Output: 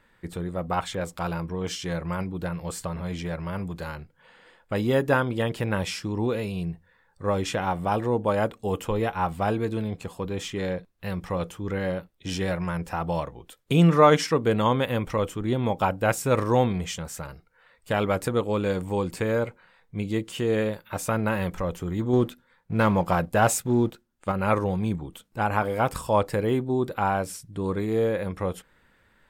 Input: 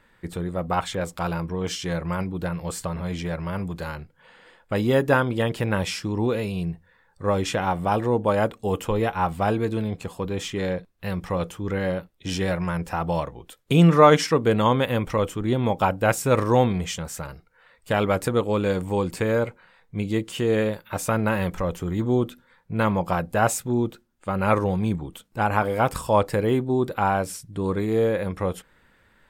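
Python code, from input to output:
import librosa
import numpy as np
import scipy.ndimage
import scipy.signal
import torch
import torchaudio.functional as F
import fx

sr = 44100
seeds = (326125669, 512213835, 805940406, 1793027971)

y = fx.leveller(x, sr, passes=1, at=(22.13, 24.32))
y = y * librosa.db_to_amplitude(-2.5)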